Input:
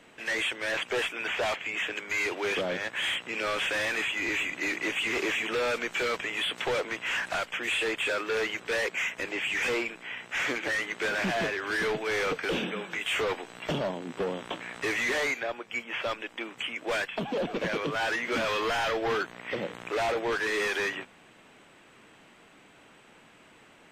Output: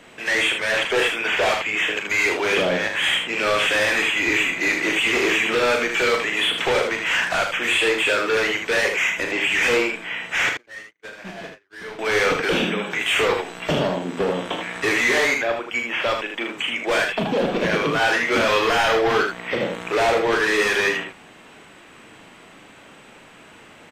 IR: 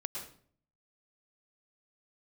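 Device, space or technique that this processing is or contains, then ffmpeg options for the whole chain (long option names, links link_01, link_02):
slapback doubling: -filter_complex "[0:a]asettb=1/sr,asplit=3[link_01][link_02][link_03];[link_01]atrim=end=10.494[link_04];[link_02]atrim=start=10.49:end=11.99,asetpts=PTS-STARTPTS,afade=type=in:duration=0.004:curve=qsin,afade=type=out:start_time=1.496:duration=0.004:curve=qsin,agate=range=-55dB:threshold=-26dB:ratio=16:detection=peak[link_05];[link_03]atrim=start=11.986[link_06];[link_04][link_05]acrossfade=duration=0.004:curve1=hsin:curve2=qsin[link_07];[link_07][link_06]acrossfade=duration=0.004:curve1=qsin:curve2=hsin,asplit=3[link_08][link_09][link_10];[link_09]adelay=38,volume=-7dB[link_11];[link_10]adelay=78,volume=-5.5dB[link_12];[link_08][link_11][link_12]amix=inputs=3:normalize=0,volume=8dB"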